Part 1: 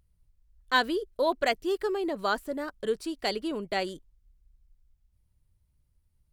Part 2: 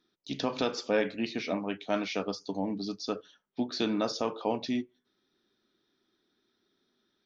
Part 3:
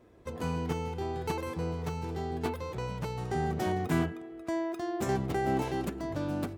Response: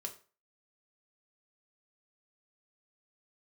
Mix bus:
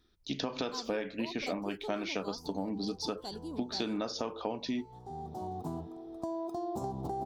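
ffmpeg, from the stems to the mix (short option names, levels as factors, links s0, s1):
-filter_complex "[0:a]volume=0.473[s0];[1:a]volume=1.33,asplit=2[s1][s2];[2:a]firequalizer=gain_entry='entry(190,0);entry(660,12);entry(1600,-1)':delay=0.05:min_phase=1,adelay=1750,volume=1.33[s3];[s2]apad=whole_len=371580[s4];[s3][s4]sidechaincompress=threshold=0.00224:ratio=3:attack=6.5:release=879[s5];[s0][s5]amix=inputs=2:normalize=0,firequalizer=gain_entry='entry(240,0);entry(570,-11);entry(880,-1);entry(1800,-27);entry(4100,-3)':delay=0.05:min_phase=1,acompressor=threshold=0.0224:ratio=6,volume=1[s6];[s1][s6]amix=inputs=2:normalize=0,acompressor=threshold=0.0282:ratio=6"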